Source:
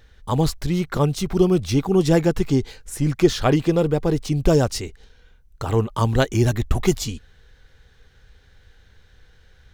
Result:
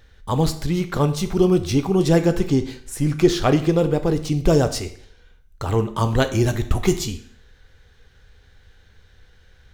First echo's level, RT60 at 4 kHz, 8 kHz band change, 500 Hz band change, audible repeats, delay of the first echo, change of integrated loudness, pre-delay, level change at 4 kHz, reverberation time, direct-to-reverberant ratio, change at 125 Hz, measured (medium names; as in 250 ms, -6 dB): no echo, 0.60 s, +0.5 dB, +0.5 dB, no echo, no echo, +0.5 dB, 9 ms, +0.5 dB, 0.60 s, 8.5 dB, 0.0 dB